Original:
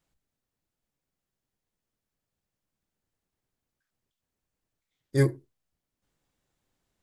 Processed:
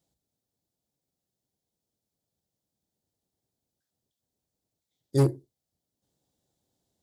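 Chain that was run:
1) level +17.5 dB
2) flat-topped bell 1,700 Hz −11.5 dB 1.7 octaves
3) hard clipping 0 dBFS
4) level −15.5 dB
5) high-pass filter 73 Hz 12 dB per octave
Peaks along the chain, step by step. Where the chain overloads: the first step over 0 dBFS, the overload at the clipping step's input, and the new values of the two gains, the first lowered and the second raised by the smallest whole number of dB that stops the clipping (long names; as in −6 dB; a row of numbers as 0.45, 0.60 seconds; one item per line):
+5.0, +4.5, 0.0, −15.5, −11.0 dBFS
step 1, 4.5 dB
step 1 +12.5 dB, step 4 −10.5 dB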